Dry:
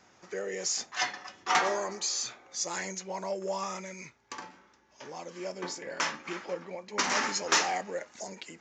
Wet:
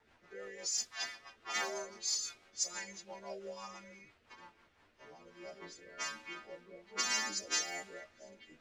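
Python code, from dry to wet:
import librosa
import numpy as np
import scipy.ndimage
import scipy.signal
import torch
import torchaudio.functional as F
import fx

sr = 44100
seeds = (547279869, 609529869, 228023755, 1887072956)

y = fx.freq_snap(x, sr, grid_st=2)
y = fx.quant_dither(y, sr, seeds[0], bits=8, dither='triangular')
y = fx.env_lowpass(y, sr, base_hz=1800.0, full_db=-19.5)
y = fx.rotary_switch(y, sr, hz=6.0, then_hz=1.2, switch_at_s=4.55)
y = fx.chorus_voices(y, sr, voices=6, hz=0.25, base_ms=11, depth_ms=2.5, mix_pct=40)
y = F.gain(torch.from_numpy(y), -6.5).numpy()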